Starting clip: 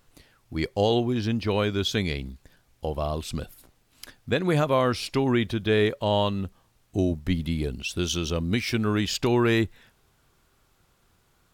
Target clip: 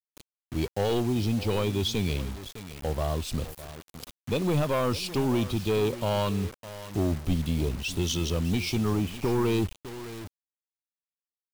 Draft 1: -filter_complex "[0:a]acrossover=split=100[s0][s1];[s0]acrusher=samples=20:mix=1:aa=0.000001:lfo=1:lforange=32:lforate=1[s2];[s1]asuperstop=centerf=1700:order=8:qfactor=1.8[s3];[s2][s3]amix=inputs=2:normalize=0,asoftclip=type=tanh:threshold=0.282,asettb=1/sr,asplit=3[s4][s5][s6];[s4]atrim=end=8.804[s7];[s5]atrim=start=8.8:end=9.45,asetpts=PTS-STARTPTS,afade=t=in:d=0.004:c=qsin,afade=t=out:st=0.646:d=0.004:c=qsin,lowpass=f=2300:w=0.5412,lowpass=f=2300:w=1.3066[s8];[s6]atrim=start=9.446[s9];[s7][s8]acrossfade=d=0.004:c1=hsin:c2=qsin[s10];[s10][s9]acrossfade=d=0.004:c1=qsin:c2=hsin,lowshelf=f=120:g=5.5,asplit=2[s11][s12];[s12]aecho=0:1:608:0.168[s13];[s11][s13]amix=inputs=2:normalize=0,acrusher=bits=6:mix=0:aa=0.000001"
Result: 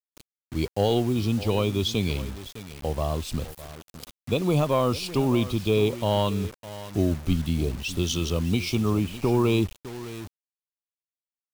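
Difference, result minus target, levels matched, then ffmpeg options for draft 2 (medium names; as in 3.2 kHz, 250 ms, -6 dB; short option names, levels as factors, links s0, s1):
decimation with a swept rate: distortion +13 dB; saturation: distortion -12 dB
-filter_complex "[0:a]acrossover=split=100[s0][s1];[s0]acrusher=samples=5:mix=1:aa=0.000001:lfo=1:lforange=8:lforate=1[s2];[s1]asuperstop=centerf=1700:order=8:qfactor=1.8[s3];[s2][s3]amix=inputs=2:normalize=0,asoftclip=type=tanh:threshold=0.0891,asettb=1/sr,asplit=3[s4][s5][s6];[s4]atrim=end=8.804[s7];[s5]atrim=start=8.8:end=9.45,asetpts=PTS-STARTPTS,afade=t=in:d=0.004:c=qsin,afade=t=out:st=0.646:d=0.004:c=qsin,lowpass=f=2300:w=0.5412,lowpass=f=2300:w=1.3066[s8];[s6]atrim=start=9.446[s9];[s7][s8]acrossfade=d=0.004:c1=hsin:c2=qsin[s10];[s10][s9]acrossfade=d=0.004:c1=qsin:c2=hsin,lowshelf=f=120:g=5.5,asplit=2[s11][s12];[s12]aecho=0:1:608:0.168[s13];[s11][s13]amix=inputs=2:normalize=0,acrusher=bits=6:mix=0:aa=0.000001"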